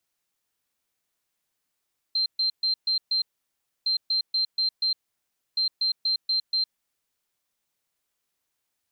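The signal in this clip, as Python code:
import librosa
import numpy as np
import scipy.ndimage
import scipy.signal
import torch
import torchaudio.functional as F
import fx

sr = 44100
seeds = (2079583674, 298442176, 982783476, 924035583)

y = fx.beep_pattern(sr, wave='sine', hz=4140.0, on_s=0.11, off_s=0.13, beeps=5, pause_s=0.64, groups=3, level_db=-21.0)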